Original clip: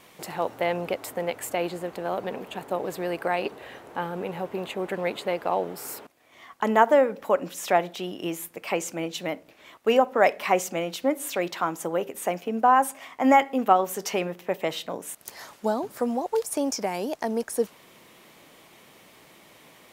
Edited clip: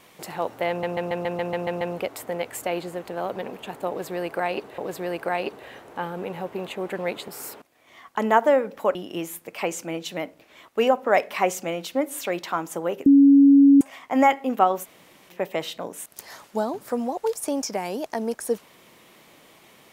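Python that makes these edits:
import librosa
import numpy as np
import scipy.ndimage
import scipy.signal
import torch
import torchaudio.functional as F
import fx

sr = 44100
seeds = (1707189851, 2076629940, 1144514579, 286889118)

y = fx.edit(x, sr, fx.stutter(start_s=0.69, slice_s=0.14, count=9),
    fx.repeat(start_s=2.77, length_s=0.89, count=2),
    fx.cut(start_s=5.27, length_s=0.46),
    fx.cut(start_s=7.4, length_s=0.64),
    fx.bleep(start_s=12.15, length_s=0.75, hz=279.0, db=-9.5),
    fx.room_tone_fill(start_s=13.93, length_s=0.46, crossfade_s=0.04), tone=tone)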